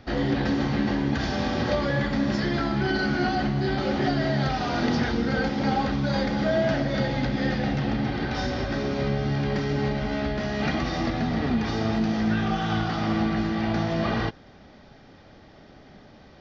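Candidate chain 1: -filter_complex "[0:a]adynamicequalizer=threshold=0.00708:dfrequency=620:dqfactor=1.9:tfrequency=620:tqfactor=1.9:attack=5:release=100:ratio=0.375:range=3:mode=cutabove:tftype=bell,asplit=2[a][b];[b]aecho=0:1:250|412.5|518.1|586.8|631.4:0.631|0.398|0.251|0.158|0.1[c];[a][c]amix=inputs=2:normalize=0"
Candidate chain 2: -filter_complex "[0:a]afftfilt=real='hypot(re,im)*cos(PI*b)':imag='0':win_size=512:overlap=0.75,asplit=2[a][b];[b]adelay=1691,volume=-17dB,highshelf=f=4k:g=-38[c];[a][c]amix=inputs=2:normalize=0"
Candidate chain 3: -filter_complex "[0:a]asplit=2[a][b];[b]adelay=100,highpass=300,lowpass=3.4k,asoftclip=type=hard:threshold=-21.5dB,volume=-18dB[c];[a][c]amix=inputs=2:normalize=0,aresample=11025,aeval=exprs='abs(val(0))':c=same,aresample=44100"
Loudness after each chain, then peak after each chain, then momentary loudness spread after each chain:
-24.5, -31.0, -30.0 LUFS; -11.0, -14.0, -12.0 dBFS; 3, 7, 3 LU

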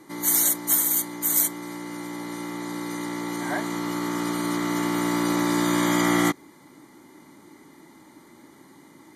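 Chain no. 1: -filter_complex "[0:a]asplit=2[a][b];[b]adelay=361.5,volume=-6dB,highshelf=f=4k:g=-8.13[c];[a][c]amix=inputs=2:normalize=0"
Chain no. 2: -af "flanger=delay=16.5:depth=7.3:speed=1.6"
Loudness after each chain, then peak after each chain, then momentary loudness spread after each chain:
-24.0, -27.0 LUFS; -7.0, -10.0 dBFS; 14, 13 LU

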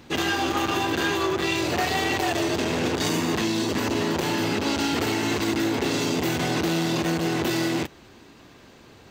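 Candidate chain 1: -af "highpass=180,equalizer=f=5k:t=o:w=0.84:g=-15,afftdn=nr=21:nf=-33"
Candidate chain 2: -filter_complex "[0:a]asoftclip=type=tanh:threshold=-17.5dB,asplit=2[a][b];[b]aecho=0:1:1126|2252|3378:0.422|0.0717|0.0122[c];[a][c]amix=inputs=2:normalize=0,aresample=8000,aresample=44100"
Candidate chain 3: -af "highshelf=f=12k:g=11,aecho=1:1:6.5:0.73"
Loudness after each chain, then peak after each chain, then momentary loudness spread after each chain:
-26.5, -26.0, -22.0 LUFS; -13.5, -15.5, -10.0 dBFS; 1, 7, 2 LU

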